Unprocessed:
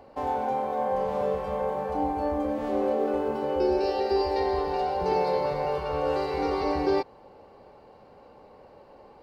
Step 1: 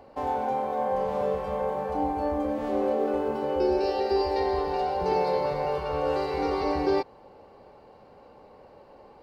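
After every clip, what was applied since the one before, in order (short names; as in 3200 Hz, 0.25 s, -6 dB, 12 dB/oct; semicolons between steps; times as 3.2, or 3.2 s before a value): nothing audible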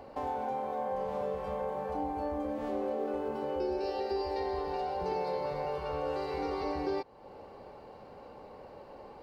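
compressor 2:1, threshold -41 dBFS, peak gain reduction 11.5 dB; gain +2 dB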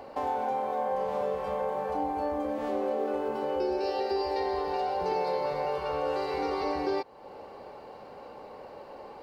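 low shelf 210 Hz -9.5 dB; gain +5.5 dB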